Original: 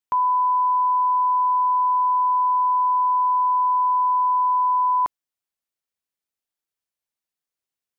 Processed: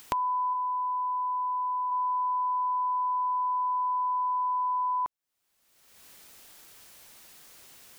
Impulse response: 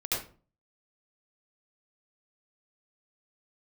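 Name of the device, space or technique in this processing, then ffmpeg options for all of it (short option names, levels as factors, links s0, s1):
upward and downward compression: -filter_complex "[0:a]acompressor=mode=upward:threshold=0.0355:ratio=2.5,acompressor=threshold=0.0282:ratio=6,asplit=3[s0][s1][s2];[s0]afade=t=out:st=0.53:d=0.02[s3];[s1]highpass=840,afade=t=in:st=0.53:d=0.02,afade=t=out:st=1.9:d=0.02[s4];[s2]afade=t=in:st=1.9:d=0.02[s5];[s3][s4][s5]amix=inputs=3:normalize=0,volume=1.41"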